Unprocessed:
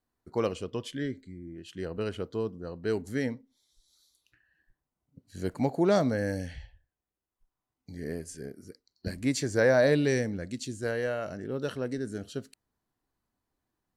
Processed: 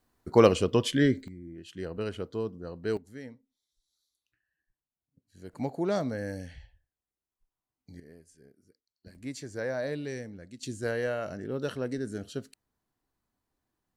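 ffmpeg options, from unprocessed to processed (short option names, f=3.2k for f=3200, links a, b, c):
-af "asetnsamples=n=441:p=0,asendcmd='1.28 volume volume -1dB;2.97 volume volume -13dB;5.53 volume volume -5dB;8 volume volume -17dB;9.15 volume volume -10.5dB;10.63 volume volume 0dB',volume=10dB"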